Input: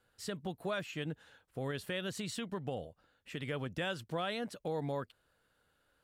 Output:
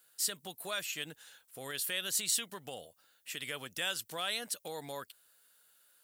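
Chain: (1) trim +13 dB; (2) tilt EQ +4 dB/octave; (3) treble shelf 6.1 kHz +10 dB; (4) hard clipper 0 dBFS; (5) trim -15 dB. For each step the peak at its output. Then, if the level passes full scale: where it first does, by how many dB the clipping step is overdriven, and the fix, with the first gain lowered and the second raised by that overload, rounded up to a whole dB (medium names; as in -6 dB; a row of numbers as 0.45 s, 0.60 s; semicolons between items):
-13.0 dBFS, -8.5 dBFS, -2.0 dBFS, -2.0 dBFS, -17.0 dBFS; nothing clips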